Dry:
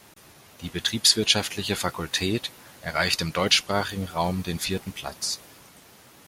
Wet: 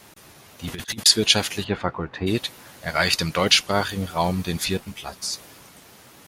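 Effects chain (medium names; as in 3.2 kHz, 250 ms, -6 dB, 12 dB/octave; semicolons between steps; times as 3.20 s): 0.65–1.06 s: compressor with a negative ratio -34 dBFS, ratio -0.5; 1.63–2.26 s: low-pass 1.9 kHz -> 1.1 kHz 12 dB/octave; 4.77–5.34 s: three-phase chorus; trim +3 dB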